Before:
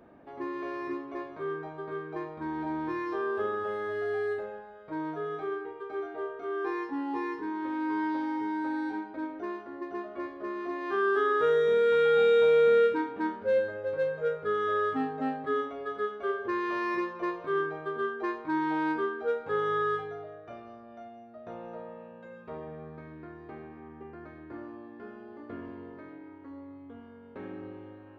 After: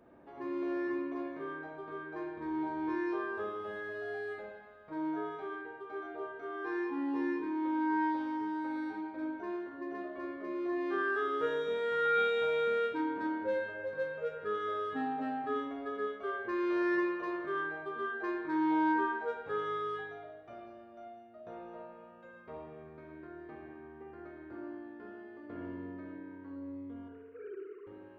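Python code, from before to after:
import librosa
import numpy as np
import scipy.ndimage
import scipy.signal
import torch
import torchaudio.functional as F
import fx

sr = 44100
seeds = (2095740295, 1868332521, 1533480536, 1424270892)

y = fx.sine_speech(x, sr, at=(27.08, 27.87))
y = fx.rev_spring(y, sr, rt60_s=1.1, pass_ms=(54,), chirp_ms=35, drr_db=1.0)
y = F.gain(torch.from_numpy(y), -6.0).numpy()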